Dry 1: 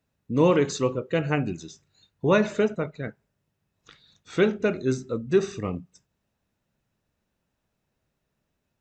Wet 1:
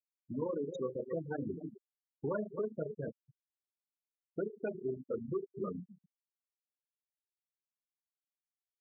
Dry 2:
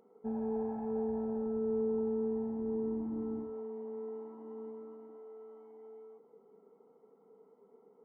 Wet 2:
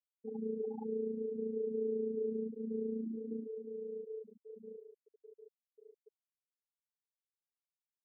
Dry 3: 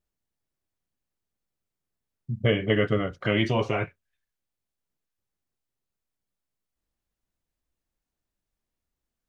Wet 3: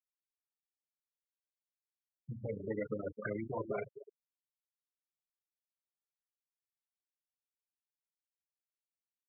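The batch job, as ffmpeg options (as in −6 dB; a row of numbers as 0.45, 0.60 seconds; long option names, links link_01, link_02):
-af "flanger=delay=4.7:depth=8.7:regen=-30:speed=0.52:shape=sinusoidal,tremolo=f=28:d=0.571,highshelf=frequency=2200:gain=-4.5,aecho=1:1:262:0.15,acompressor=threshold=-34dB:ratio=16,asoftclip=type=hard:threshold=-34dB,bandreject=frequency=60:width_type=h:width=6,bandreject=frequency=120:width_type=h:width=6,bandreject=frequency=180:width_type=h:width=6,bandreject=frequency=240:width_type=h:width=6,bandreject=frequency=300:width_type=h:width=6,bandreject=frequency=360:width_type=h:width=6,afftfilt=real='re*gte(hypot(re,im),0.0224)':imag='im*gte(hypot(re,im),0.0224)':win_size=1024:overlap=0.75,highpass=frequency=250:poles=1,volume=6dB"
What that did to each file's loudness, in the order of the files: −14.5, −2.5, −15.0 LU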